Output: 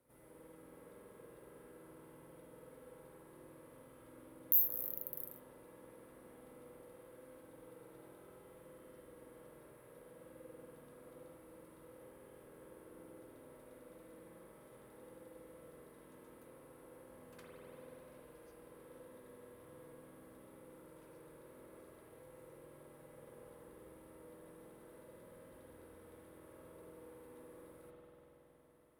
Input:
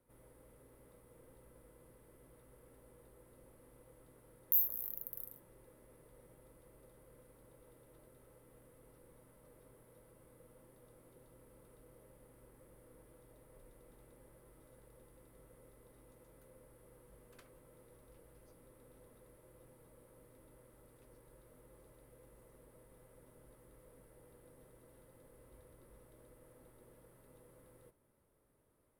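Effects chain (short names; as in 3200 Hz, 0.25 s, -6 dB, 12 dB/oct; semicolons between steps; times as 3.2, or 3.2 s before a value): HPF 130 Hz 6 dB/oct; spring tank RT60 3.7 s, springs 47 ms, chirp 40 ms, DRR -4.5 dB; gain +1 dB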